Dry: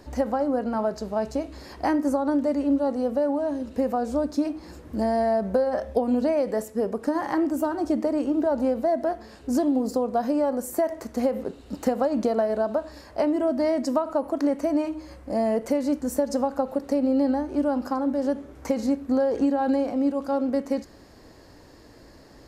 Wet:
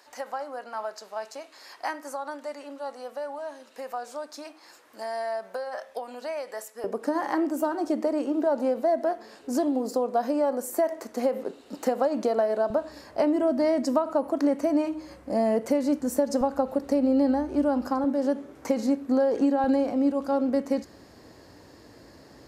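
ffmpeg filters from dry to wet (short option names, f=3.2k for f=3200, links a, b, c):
-af "asetnsamples=n=441:p=0,asendcmd='6.84 highpass f 300;12.7 highpass f 110;16.41 highpass f 40;18.04 highpass f 160;19.64 highpass f 76',highpass=990"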